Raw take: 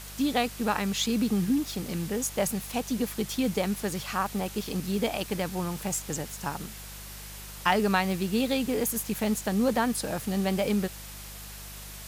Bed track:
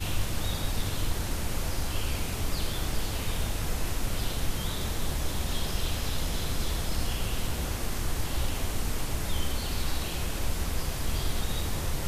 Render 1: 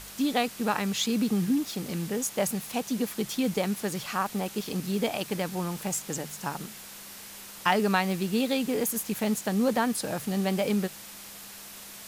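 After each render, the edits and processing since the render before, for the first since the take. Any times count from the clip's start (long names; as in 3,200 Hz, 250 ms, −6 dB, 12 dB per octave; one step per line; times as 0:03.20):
hum removal 50 Hz, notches 3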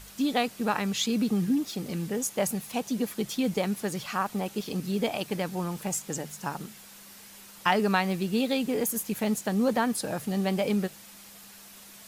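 broadband denoise 6 dB, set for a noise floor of −45 dBFS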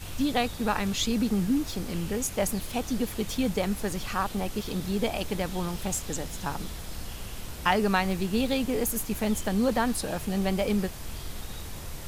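mix in bed track −8.5 dB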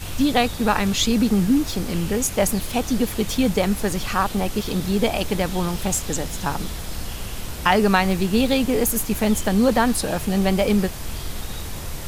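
level +7.5 dB
brickwall limiter −3 dBFS, peak gain reduction 2.5 dB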